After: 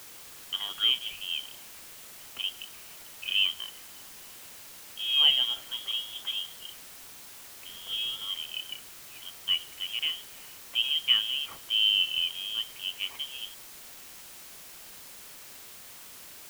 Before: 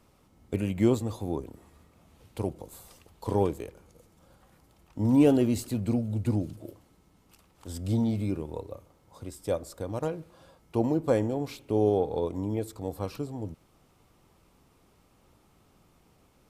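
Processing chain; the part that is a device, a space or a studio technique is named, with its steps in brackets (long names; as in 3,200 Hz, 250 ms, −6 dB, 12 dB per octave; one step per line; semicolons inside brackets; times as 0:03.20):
scrambled radio voice (band-pass filter 390–2,800 Hz; voice inversion scrambler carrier 3,500 Hz; white noise bed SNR 14 dB)
level +2.5 dB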